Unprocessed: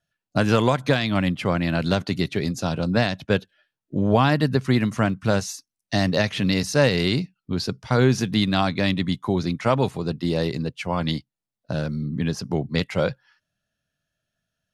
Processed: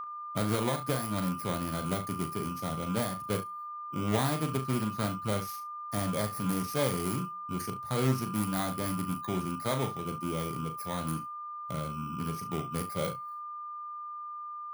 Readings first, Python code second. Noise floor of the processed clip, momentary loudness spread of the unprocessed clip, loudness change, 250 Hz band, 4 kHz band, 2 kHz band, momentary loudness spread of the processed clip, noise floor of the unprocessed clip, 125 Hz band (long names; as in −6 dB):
−41 dBFS, 8 LU, −10.0 dB, −10.5 dB, −13.0 dB, −14.0 dB, 10 LU, below −85 dBFS, −10.0 dB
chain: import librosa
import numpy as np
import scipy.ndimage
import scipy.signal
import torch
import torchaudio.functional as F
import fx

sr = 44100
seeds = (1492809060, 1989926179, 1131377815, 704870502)

p1 = fx.bit_reversed(x, sr, seeds[0], block=16)
p2 = p1 + 10.0 ** (-24.0 / 20.0) * np.sin(2.0 * np.pi * 1200.0 * np.arange(len(p1)) / sr)
p3 = fx.comb_fb(p2, sr, f0_hz=180.0, decay_s=0.42, harmonics='all', damping=0.0, mix_pct=30)
p4 = p3 + fx.room_early_taps(p3, sr, ms=(38, 69), db=(-7.5, -14.5), dry=0)
p5 = fx.doppler_dist(p4, sr, depth_ms=0.27)
y = p5 * 10.0 ** (-8.5 / 20.0)